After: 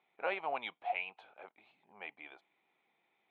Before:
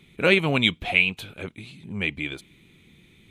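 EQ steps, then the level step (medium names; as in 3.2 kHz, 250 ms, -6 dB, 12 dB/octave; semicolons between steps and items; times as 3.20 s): ladder band-pass 860 Hz, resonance 65%; 0.0 dB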